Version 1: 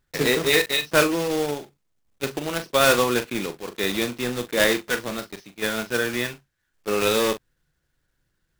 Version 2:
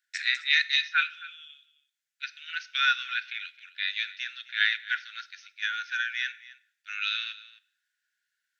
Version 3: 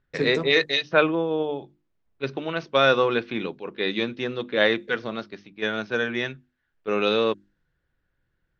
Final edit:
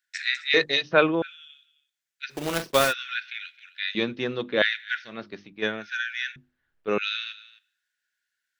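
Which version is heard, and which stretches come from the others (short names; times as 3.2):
2
0.54–1.22 from 3
2.37–2.86 from 1, crossfade 0.16 s
3.95–4.62 from 3
5.16–5.78 from 3, crossfade 0.24 s
6.36–6.98 from 3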